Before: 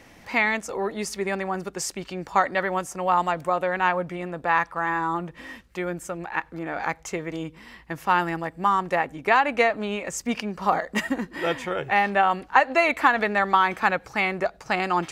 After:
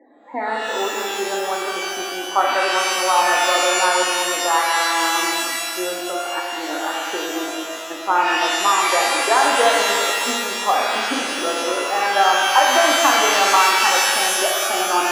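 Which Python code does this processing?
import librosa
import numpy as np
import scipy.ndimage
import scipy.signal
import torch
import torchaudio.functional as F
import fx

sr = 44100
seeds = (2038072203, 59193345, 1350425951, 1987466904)

y = fx.spec_topn(x, sr, count=32)
y = scipy.signal.sosfilt(scipy.signal.ellip(3, 1.0, 40, [280.0, 1500.0], 'bandpass', fs=sr, output='sos'), y)
y = fx.rev_shimmer(y, sr, seeds[0], rt60_s=2.1, semitones=12, shimmer_db=-2, drr_db=-1.5)
y = y * librosa.db_to_amplitude(2.0)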